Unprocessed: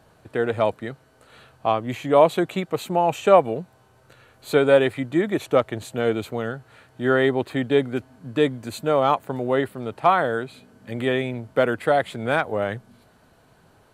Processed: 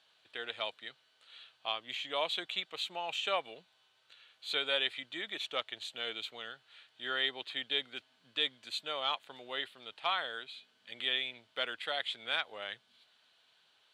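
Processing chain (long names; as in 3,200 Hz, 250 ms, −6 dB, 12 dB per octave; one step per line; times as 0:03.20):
resonant band-pass 3,400 Hz, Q 3.5
level +4.5 dB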